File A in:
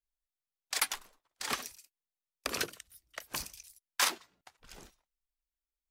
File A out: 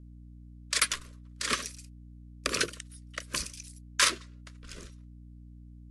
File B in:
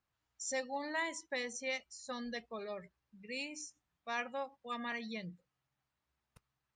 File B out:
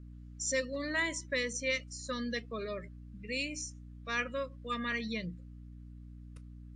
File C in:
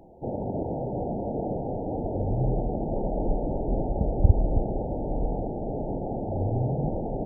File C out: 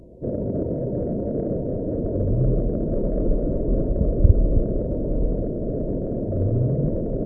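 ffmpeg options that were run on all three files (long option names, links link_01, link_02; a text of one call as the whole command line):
ffmpeg -i in.wav -filter_complex "[0:a]asplit=2[link_01][link_02];[link_02]asoftclip=type=tanh:threshold=-20dB,volume=-6dB[link_03];[link_01][link_03]amix=inputs=2:normalize=0,aeval=exprs='val(0)+0.00316*(sin(2*PI*60*n/s)+sin(2*PI*2*60*n/s)/2+sin(2*PI*3*60*n/s)/3+sin(2*PI*4*60*n/s)/4+sin(2*PI*5*60*n/s)/5)':channel_layout=same,asuperstop=centerf=810:order=4:qfactor=1.8,volume=2.5dB" -ar 24000 -c:a aac -b:a 96k out.aac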